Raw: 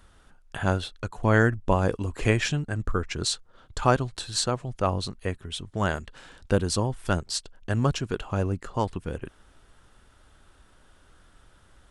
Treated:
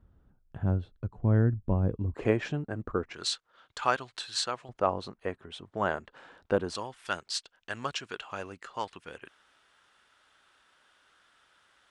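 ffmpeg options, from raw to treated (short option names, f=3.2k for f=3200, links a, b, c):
-af "asetnsamples=n=441:p=0,asendcmd='2.14 bandpass f 470;3.14 bandpass f 2200;4.69 bandpass f 770;6.75 bandpass f 2500',bandpass=f=110:t=q:w=0.63:csg=0"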